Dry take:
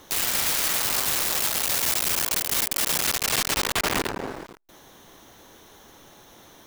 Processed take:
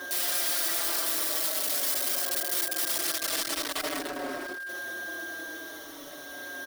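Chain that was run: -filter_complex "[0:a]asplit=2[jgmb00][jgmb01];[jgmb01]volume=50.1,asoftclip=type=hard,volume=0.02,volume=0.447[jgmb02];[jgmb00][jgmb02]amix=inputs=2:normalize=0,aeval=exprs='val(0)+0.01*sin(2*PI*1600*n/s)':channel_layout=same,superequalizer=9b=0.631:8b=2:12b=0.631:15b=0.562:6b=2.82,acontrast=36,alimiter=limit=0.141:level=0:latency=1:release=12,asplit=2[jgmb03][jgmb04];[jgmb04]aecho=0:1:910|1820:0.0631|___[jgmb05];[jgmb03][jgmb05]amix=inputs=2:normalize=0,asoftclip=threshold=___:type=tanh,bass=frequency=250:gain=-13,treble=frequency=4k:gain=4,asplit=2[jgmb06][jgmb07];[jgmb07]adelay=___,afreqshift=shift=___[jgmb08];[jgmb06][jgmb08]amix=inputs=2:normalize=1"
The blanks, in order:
0.024, 0.0631, 5, -0.45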